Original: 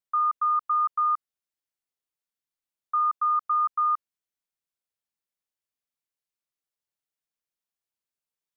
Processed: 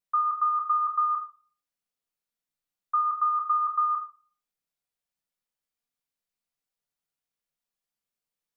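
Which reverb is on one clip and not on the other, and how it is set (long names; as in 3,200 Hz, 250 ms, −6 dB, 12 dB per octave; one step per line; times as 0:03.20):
rectangular room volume 340 cubic metres, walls furnished, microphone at 1.8 metres
level −1.5 dB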